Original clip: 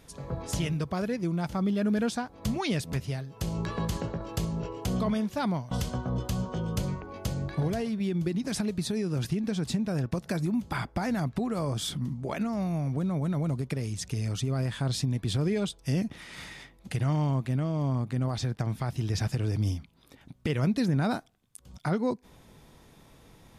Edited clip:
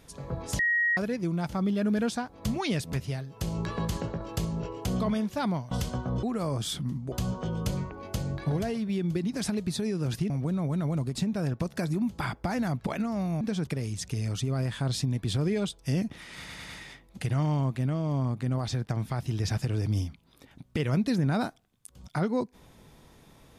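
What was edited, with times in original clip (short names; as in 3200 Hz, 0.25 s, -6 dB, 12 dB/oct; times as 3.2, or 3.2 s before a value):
0.59–0.97 bleep 1890 Hz -22 dBFS
9.41–9.67 swap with 12.82–13.67
11.39–12.28 move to 6.23
16.39 stutter 0.10 s, 4 plays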